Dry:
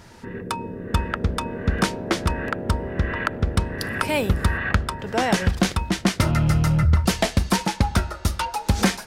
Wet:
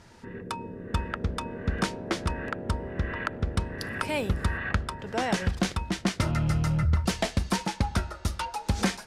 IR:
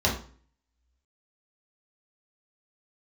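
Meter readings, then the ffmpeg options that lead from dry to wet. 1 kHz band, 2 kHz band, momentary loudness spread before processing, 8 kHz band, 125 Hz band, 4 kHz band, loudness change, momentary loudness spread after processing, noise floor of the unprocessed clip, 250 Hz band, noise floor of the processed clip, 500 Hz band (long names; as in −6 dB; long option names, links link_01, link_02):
−6.5 dB, −6.5 dB, 7 LU, −7.0 dB, −6.5 dB, −6.5 dB, −6.5 dB, 7 LU, −40 dBFS, −6.5 dB, −46 dBFS, −6.5 dB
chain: -af "lowpass=11000,volume=-6.5dB"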